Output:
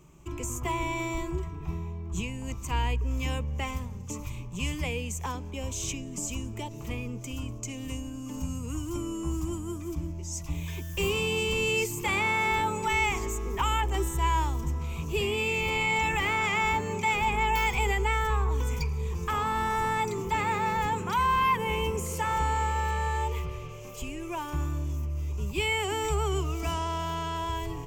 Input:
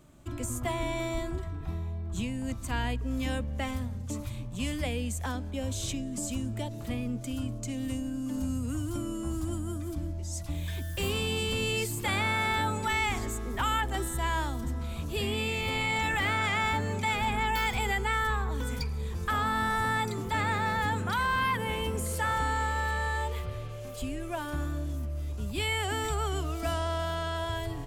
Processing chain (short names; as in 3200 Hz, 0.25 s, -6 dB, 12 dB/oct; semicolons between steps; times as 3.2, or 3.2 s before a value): ripple EQ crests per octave 0.75, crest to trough 11 dB